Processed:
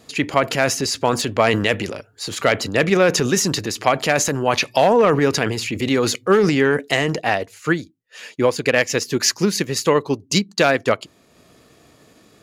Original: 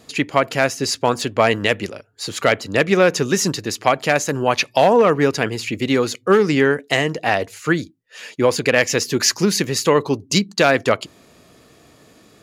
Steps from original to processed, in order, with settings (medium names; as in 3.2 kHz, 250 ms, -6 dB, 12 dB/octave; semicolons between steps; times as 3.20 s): transient shaper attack +1 dB, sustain +8 dB, from 7.20 s sustain -4 dB; trim -1.5 dB